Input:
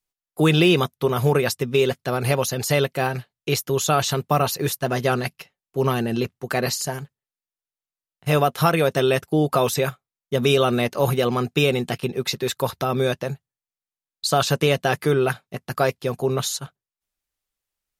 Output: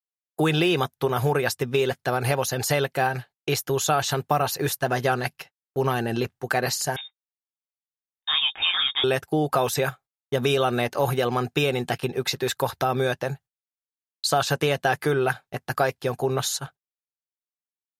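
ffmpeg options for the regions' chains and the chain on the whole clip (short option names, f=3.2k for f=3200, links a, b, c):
-filter_complex "[0:a]asettb=1/sr,asplit=3[a][b][c];[a]atrim=end=6.964[d];[b]atrim=start=6.96:end=9.04,asetpts=PTS-STARTPTS,afade=t=in:d=0.004:c=qsin,afade=t=out:st=2.076:d=0.004:c=qsin,flanger=delay=16:depth=6.5:speed=2.6,lowpass=f=3.2k:t=q:w=0.5098,lowpass=f=3.2k:t=q:w=0.6013,lowpass=f=3.2k:t=q:w=0.9,lowpass=f=3.2k:t=q:w=2.563,afreqshift=-3800[e];[c]atrim=start=9.036[f];[d][e]acrossfade=d=0.004:c1=hsin:c2=qsin[g];[g][f]acrossfade=d=0.004:c1=qsin:c2=hsin,agate=range=-41dB:threshold=-44dB:ratio=16:detection=peak,equalizer=f=200:t=o:w=0.33:g=-10,equalizer=f=800:t=o:w=0.33:g=7,equalizer=f=1.6k:t=o:w=0.33:g=6,acompressor=threshold=-21dB:ratio=2"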